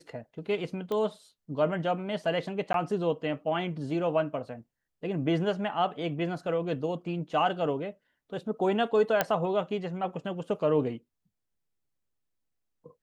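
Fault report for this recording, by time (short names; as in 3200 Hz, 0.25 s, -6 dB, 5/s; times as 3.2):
0.92 pop -21 dBFS
2.73–2.74 gap 12 ms
9.21 pop -9 dBFS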